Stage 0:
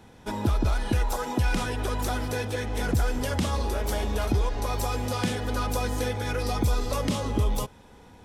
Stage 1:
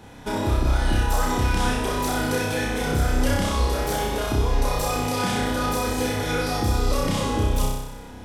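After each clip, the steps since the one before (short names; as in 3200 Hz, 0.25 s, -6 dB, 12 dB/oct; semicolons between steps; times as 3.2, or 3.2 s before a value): limiter -22.5 dBFS, peak gain reduction 7.5 dB; on a send: flutter echo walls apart 5.4 m, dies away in 0.98 s; on the sum: gain +5 dB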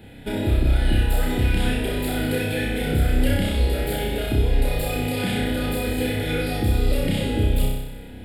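fixed phaser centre 2600 Hz, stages 4; gain +2.5 dB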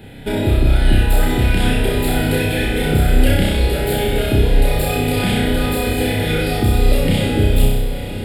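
diffused feedback echo 0.995 s, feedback 42%, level -10.5 dB; on a send at -11 dB: reverb, pre-delay 3 ms; on the sum: gain +6 dB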